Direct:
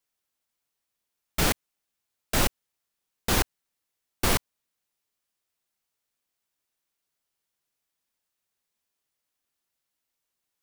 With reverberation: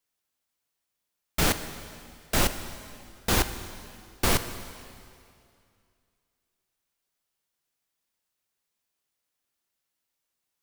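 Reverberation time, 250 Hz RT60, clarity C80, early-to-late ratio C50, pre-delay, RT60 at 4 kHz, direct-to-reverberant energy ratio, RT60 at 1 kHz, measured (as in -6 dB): 2.4 s, 2.4 s, 11.5 dB, 11.0 dB, 5 ms, 2.2 s, 9.5 dB, 2.4 s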